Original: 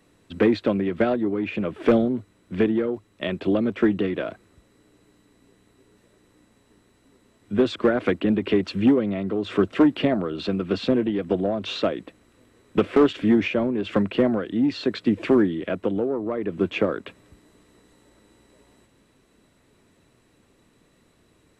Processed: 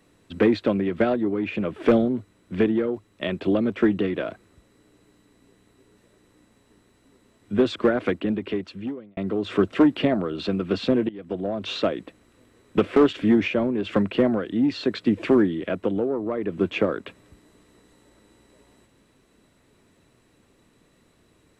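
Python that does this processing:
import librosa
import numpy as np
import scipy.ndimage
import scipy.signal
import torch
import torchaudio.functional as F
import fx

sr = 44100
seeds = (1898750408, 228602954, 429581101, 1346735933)

y = fx.edit(x, sr, fx.fade_out_span(start_s=7.83, length_s=1.34),
    fx.fade_in_from(start_s=11.09, length_s=0.62, floor_db=-18.5), tone=tone)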